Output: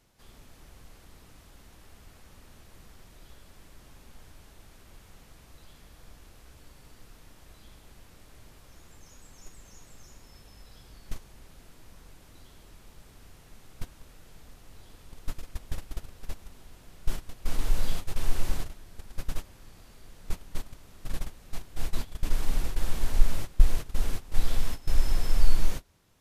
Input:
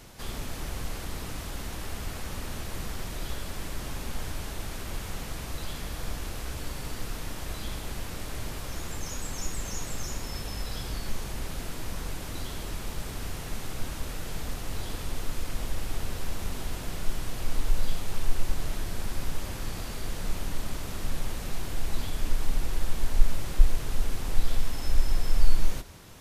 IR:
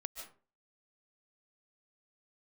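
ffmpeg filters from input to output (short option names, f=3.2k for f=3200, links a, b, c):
-af "agate=range=-17dB:threshold=-23dB:ratio=16:detection=peak"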